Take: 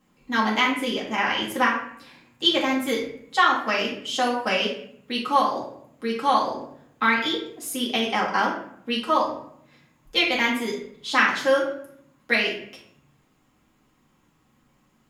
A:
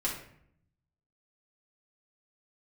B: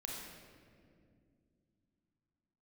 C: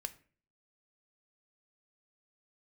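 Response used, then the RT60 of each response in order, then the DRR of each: A; 0.65, 2.2, 0.45 s; -6.0, -2.0, 10.0 dB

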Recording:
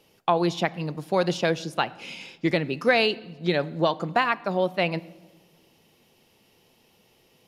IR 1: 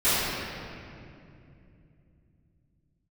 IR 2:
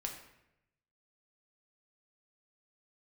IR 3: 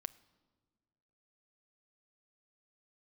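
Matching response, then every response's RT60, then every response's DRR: 3; 2.6, 0.85, 1.6 s; -20.5, 1.5, 15.5 dB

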